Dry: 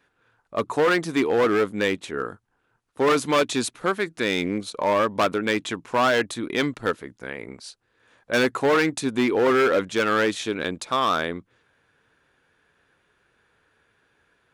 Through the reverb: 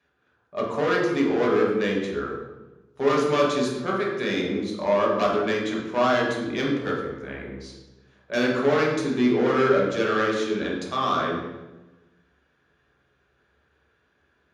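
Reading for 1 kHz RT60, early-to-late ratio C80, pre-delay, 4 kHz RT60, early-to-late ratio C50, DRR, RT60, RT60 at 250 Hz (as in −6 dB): 1.0 s, 5.0 dB, 3 ms, 0.80 s, 2.0 dB, −3.5 dB, 1.1 s, 1.4 s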